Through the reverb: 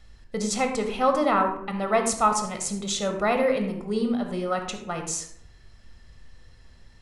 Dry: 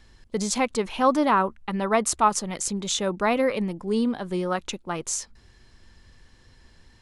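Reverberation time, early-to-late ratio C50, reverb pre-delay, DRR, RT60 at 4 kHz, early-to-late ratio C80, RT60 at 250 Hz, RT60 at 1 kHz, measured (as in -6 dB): 0.65 s, 7.0 dB, 15 ms, 4.5 dB, 0.40 s, 10.0 dB, 0.80 s, 0.60 s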